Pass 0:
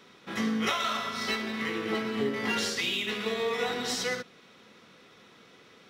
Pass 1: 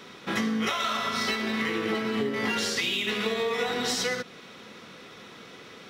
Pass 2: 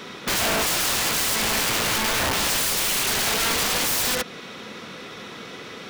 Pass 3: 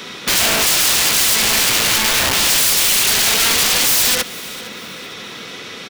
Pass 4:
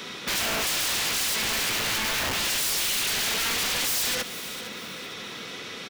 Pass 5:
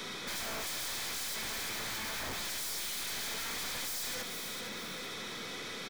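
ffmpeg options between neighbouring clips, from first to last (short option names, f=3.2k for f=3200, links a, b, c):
-af "acompressor=threshold=-34dB:ratio=6,volume=9dB"
-af "aeval=exprs='(mod(21.1*val(0)+1,2)-1)/21.1':c=same,volume=8.5dB"
-filter_complex "[0:a]acrossover=split=510|2100[a][b][c];[c]acontrast=74[d];[a][b][d]amix=inputs=3:normalize=0,aecho=1:1:458|916|1374:0.112|0.037|0.0122,volume=3dB"
-af "asoftclip=type=tanh:threshold=-17.5dB,volume=-5.5dB"
-af "aeval=exprs='(tanh(70.8*val(0)+0.25)-tanh(0.25))/70.8':c=same,bandreject=f=2.8k:w=7.1"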